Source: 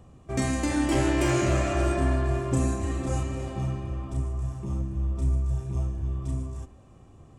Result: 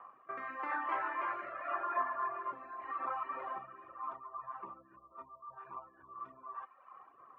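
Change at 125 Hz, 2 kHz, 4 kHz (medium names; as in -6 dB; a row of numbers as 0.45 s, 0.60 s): under -40 dB, -6.5 dB, under -20 dB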